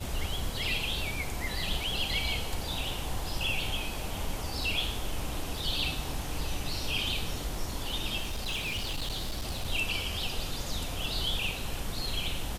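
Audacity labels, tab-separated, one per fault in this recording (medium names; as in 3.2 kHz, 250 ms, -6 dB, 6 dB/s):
8.210000	9.660000	clipped -29 dBFS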